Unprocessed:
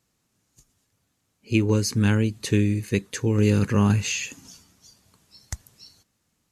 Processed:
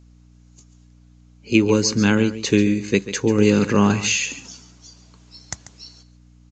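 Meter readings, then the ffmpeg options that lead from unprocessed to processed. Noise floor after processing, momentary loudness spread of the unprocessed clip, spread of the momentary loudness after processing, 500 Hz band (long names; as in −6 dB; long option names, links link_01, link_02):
−51 dBFS, 17 LU, 18 LU, +7.0 dB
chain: -af "highpass=190,bandreject=frequency=1800:width=18,aeval=exprs='val(0)+0.00178*(sin(2*PI*60*n/s)+sin(2*PI*2*60*n/s)/2+sin(2*PI*3*60*n/s)/3+sin(2*PI*4*60*n/s)/4+sin(2*PI*5*60*n/s)/5)':channel_layout=same,aecho=1:1:140:0.211,aresample=16000,aresample=44100,volume=7dB"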